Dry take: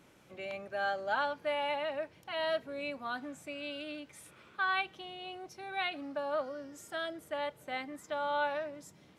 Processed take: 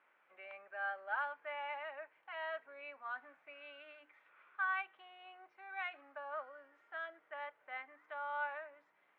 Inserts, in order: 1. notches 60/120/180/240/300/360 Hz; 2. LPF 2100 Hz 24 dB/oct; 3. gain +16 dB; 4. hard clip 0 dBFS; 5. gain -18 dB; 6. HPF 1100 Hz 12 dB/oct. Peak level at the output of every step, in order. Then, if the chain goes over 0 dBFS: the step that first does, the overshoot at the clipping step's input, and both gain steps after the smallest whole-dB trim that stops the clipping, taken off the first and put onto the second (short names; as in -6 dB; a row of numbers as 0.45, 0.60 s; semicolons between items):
-19.5, -20.0, -4.0, -4.0, -22.0, -26.0 dBFS; no overload